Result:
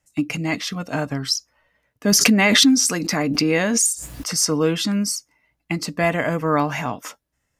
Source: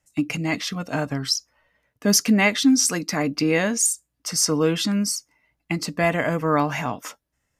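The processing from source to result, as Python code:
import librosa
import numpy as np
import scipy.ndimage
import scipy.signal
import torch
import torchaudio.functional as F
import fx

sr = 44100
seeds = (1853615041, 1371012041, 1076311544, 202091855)

y = fx.pre_swell(x, sr, db_per_s=23.0, at=(2.12, 4.37))
y = F.gain(torch.from_numpy(y), 1.0).numpy()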